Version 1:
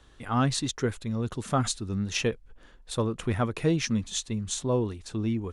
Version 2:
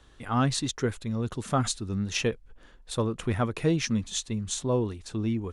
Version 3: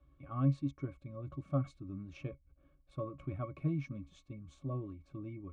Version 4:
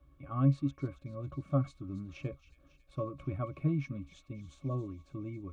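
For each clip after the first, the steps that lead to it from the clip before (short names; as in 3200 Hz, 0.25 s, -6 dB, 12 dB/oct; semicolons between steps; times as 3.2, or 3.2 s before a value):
nothing audible
octave resonator C#, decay 0.11 s; gain -1.5 dB
thin delay 0.275 s, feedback 63%, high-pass 2700 Hz, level -11.5 dB; gain +3.5 dB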